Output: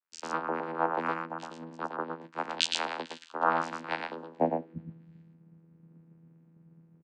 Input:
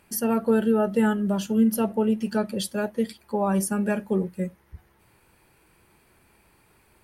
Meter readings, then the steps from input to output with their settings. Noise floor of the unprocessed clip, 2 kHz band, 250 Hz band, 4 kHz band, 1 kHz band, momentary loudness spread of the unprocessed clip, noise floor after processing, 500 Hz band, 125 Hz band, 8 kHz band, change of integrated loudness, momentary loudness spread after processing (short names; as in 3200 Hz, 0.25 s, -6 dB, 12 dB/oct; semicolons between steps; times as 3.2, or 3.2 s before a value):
-62 dBFS, -0.5 dB, -17.0 dB, +4.5 dB, +1.5 dB, 7 LU, -61 dBFS, -9.5 dB, -14.0 dB, -9.5 dB, -8.0 dB, 12 LU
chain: spectral gain 2.35–5.22, 2200–5100 Hz +11 dB; low shelf 450 Hz +12 dB; vocoder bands 8, saw 82.1 Hz; in parallel at +2 dB: compressor, threshold -26 dBFS, peak gain reduction 18.5 dB; on the sum: high-pass sweep 1200 Hz -> 200 Hz, 4.23–4.85; on a send: echo 0.116 s -3.5 dB; on the sum: three-band expander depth 100%; gain -2.5 dB